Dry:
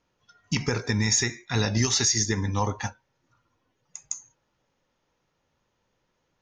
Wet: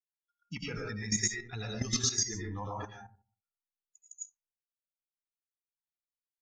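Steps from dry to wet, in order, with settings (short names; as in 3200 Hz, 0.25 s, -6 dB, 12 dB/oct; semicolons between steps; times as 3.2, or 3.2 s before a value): per-bin expansion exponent 2; digital reverb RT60 0.43 s, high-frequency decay 0.4×, pre-delay 65 ms, DRR -3.5 dB; level quantiser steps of 11 dB; gain -5 dB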